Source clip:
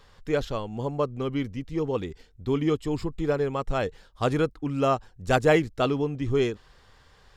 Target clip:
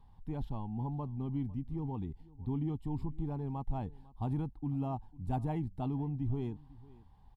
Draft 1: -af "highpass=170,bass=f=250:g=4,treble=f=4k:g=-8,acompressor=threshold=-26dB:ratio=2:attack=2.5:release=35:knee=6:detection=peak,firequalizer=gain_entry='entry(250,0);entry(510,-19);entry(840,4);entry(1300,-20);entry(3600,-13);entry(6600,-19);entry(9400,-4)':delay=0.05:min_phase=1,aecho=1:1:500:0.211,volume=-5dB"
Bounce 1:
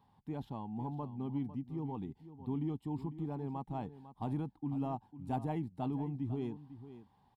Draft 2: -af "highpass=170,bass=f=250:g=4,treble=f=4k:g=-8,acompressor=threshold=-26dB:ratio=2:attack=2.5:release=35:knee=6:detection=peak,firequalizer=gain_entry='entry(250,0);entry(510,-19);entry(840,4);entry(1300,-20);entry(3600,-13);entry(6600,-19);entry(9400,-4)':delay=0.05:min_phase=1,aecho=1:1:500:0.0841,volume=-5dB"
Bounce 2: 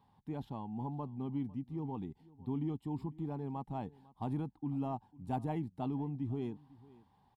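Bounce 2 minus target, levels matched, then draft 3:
125 Hz band -2.5 dB
-af "bass=f=250:g=4,treble=f=4k:g=-8,acompressor=threshold=-26dB:ratio=2:attack=2.5:release=35:knee=6:detection=peak,firequalizer=gain_entry='entry(250,0);entry(510,-19);entry(840,4);entry(1300,-20);entry(3600,-13);entry(6600,-19);entry(9400,-4)':delay=0.05:min_phase=1,aecho=1:1:500:0.0841,volume=-5dB"

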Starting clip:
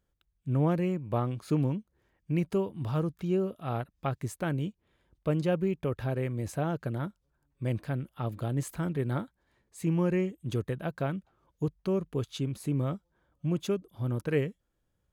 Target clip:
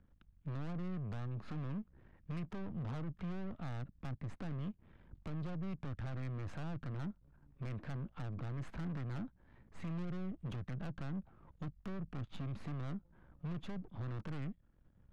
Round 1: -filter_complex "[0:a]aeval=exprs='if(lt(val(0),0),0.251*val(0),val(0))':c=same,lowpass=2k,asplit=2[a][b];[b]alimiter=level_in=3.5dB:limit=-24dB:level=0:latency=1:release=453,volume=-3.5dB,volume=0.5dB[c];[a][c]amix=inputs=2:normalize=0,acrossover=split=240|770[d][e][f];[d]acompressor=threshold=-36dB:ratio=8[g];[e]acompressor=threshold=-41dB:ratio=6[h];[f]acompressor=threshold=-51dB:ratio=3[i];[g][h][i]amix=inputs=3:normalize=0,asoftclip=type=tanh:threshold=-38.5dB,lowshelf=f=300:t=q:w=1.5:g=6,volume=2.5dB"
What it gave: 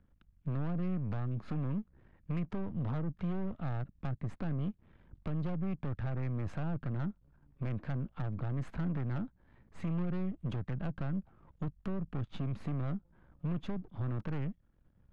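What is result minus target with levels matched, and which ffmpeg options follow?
soft clip: distortion -5 dB
-filter_complex "[0:a]aeval=exprs='if(lt(val(0),0),0.251*val(0),val(0))':c=same,lowpass=2k,asplit=2[a][b];[b]alimiter=level_in=3.5dB:limit=-24dB:level=0:latency=1:release=453,volume=-3.5dB,volume=0.5dB[c];[a][c]amix=inputs=2:normalize=0,acrossover=split=240|770[d][e][f];[d]acompressor=threshold=-36dB:ratio=8[g];[e]acompressor=threshold=-41dB:ratio=6[h];[f]acompressor=threshold=-51dB:ratio=3[i];[g][h][i]amix=inputs=3:normalize=0,asoftclip=type=tanh:threshold=-46.5dB,lowshelf=f=300:t=q:w=1.5:g=6,volume=2.5dB"

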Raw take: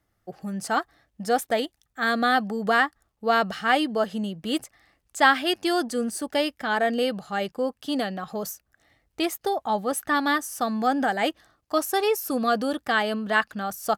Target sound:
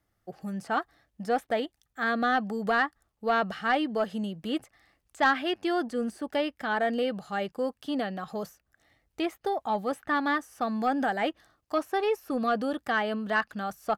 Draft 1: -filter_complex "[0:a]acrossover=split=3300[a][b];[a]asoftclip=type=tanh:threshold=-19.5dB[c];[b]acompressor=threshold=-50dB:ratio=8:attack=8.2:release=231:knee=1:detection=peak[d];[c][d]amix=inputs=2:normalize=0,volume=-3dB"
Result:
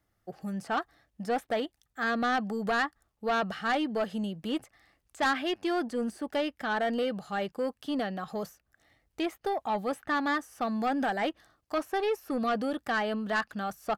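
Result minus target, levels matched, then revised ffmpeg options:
soft clip: distortion +9 dB
-filter_complex "[0:a]acrossover=split=3300[a][b];[a]asoftclip=type=tanh:threshold=-12dB[c];[b]acompressor=threshold=-50dB:ratio=8:attack=8.2:release=231:knee=1:detection=peak[d];[c][d]amix=inputs=2:normalize=0,volume=-3dB"

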